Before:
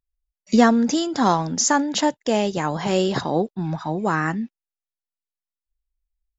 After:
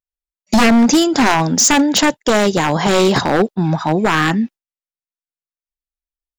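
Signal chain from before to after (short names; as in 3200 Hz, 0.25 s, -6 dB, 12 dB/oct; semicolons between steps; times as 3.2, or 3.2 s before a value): gate with hold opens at -26 dBFS; low shelf 79 Hz -7.5 dB; in parallel at -2 dB: limiter -12 dBFS, peak gain reduction 8.5 dB; on the sum: wavefolder -11.5 dBFS; gain +5.5 dB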